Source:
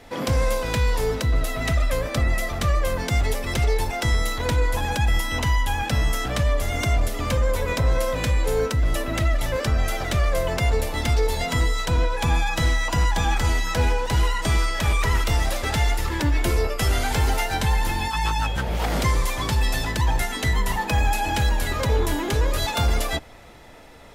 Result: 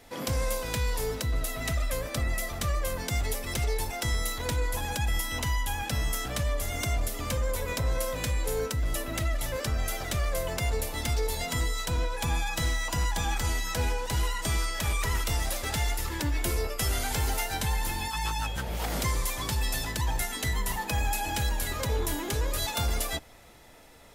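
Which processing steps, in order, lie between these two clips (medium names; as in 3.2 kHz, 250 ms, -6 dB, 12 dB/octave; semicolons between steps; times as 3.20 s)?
treble shelf 6 kHz +11.5 dB; trim -8 dB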